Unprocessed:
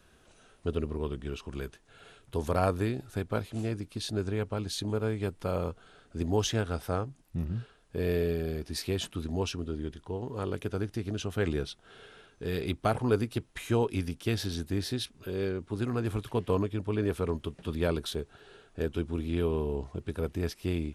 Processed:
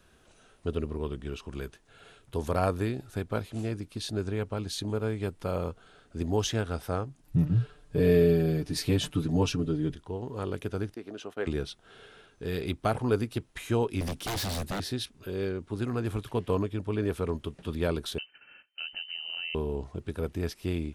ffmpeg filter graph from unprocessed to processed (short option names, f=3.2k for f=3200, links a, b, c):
-filter_complex "[0:a]asettb=1/sr,asplit=3[a][b][c];[a]atrim=end=7.234[d];[b]atrim=start=7.23:end=9.95,asetpts=PTS-STARTPTS,afade=t=in:d=0.004:c=qsin,afade=t=out:st=2.716:d=0.004:c=qsin,lowshelf=f=270:g=8.5,aecho=1:1:6.8:0.96,atrim=end_sample=119952[e];[c]atrim=start=9.946[f];[d][e]acrossfade=d=0.004:c1=hsin:c2=qsin[g];[g][f]acrossfade=d=0.004:c1=qsin:c2=hsin,asettb=1/sr,asplit=3[h][i][j];[h]atrim=end=10.944[k];[i]atrim=start=10.94:end=11.47,asetpts=PTS-STARTPTS,afade=t=in:d=0.004:c=qsin,afade=t=out:st=0.526:d=0.004:c=qsin,agate=range=-16dB:threshold=-42dB:ratio=16:release=100:detection=peak,highpass=360,highshelf=f=2.7k:g=-10.5[l];[j]atrim=start=11.466[m];[k][l]acrossfade=d=0.004:c1=hsin:c2=qsin[n];[n][m]acrossfade=d=0.004:c1=qsin:c2=hsin,asettb=1/sr,asplit=3[o][p][q];[o]atrim=end=14.014[r];[p]atrim=start=14.01:end=14.8,asetpts=PTS-STARTPTS,afade=t=in:d=0.004:c=qsin,afade=t=out:st=0.786:d=0.004:c=qsin,acontrast=85,aeval=exprs='0.0447*(abs(mod(val(0)/0.0447+3,4)-2)-1)':c=same[s];[q]atrim=start=14.796[t];[r][s]acrossfade=d=0.004:c1=hsin:c2=qsin[u];[u][t]acrossfade=d=0.004:c1=qsin:c2=hsin,asettb=1/sr,asplit=3[v][w][x];[v]atrim=end=18.184[y];[w]atrim=start=18.18:end=19.55,asetpts=PTS-STARTPTS,afade=t=in:d=0.004:c=qsin,afade=t=out:st=1.366:d=0.004:c=qsin,agate=range=-20dB:threshold=-56dB:ratio=16:release=100:detection=peak,acompressor=threshold=-35dB:ratio=3:attack=3.2:release=140:knee=1:detection=peak,lowpass=f=2.6k:t=q:w=0.5098,lowpass=f=2.6k:t=q:w=0.6013,lowpass=f=2.6k:t=q:w=0.9,lowpass=f=2.6k:t=q:w=2.563,afreqshift=-3100[z];[x]atrim=start=19.546[aa];[y][z]acrossfade=d=0.004:c1=hsin:c2=qsin[ab];[ab][aa]acrossfade=d=0.004:c1=qsin:c2=hsin"